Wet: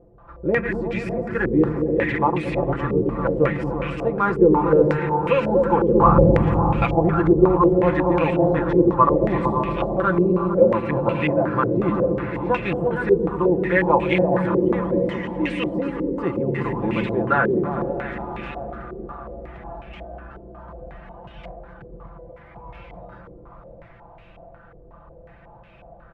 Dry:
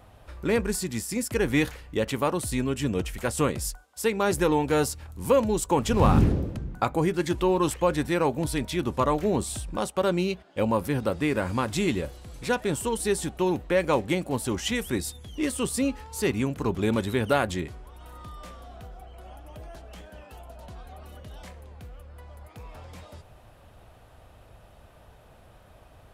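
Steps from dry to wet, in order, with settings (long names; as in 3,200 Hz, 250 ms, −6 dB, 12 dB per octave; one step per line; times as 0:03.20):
feedback delay that plays each chunk backwards 304 ms, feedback 73%, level −10 dB
comb filter 5.9 ms, depth 75%
echo whose low-pass opens from repeat to repeat 114 ms, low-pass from 200 Hz, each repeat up 1 octave, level 0 dB
low-pass on a step sequencer 5.5 Hz 420–2,500 Hz
level −2 dB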